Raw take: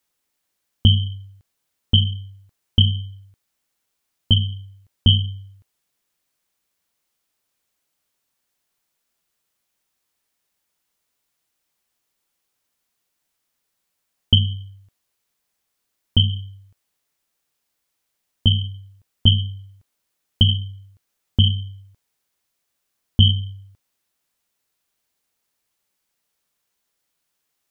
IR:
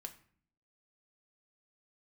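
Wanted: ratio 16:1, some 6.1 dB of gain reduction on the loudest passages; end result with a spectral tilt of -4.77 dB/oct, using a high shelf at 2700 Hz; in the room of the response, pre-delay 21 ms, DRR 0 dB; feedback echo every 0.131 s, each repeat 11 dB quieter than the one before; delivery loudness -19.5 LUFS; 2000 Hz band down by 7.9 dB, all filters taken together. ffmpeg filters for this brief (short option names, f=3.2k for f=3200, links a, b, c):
-filter_complex "[0:a]equalizer=f=2k:t=o:g=-8.5,highshelf=f=2.7k:g=-6.5,acompressor=threshold=-16dB:ratio=16,aecho=1:1:131|262|393:0.282|0.0789|0.0221,asplit=2[a][b];[1:a]atrim=start_sample=2205,adelay=21[c];[b][c]afir=irnorm=-1:irlink=0,volume=4.5dB[d];[a][d]amix=inputs=2:normalize=0,volume=2.5dB"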